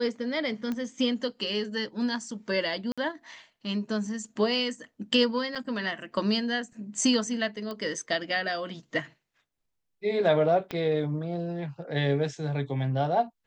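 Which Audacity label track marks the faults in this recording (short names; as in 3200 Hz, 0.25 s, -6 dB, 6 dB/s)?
0.720000	0.720000	pop -20 dBFS
2.920000	2.980000	gap 56 ms
5.550000	5.560000	gap 5.9 ms
7.710000	7.710000	pop -23 dBFS
10.710000	10.710000	pop -19 dBFS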